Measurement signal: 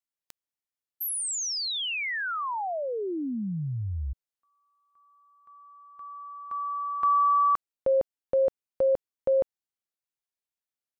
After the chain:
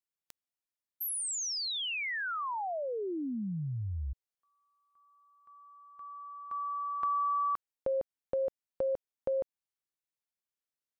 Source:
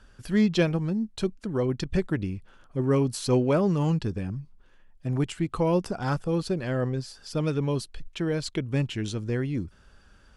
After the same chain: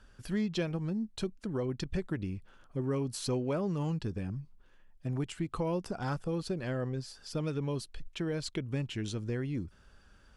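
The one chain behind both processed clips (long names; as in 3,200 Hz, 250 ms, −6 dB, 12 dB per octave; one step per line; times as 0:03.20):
downward compressor 2.5 to 1, threshold −27 dBFS
level −4 dB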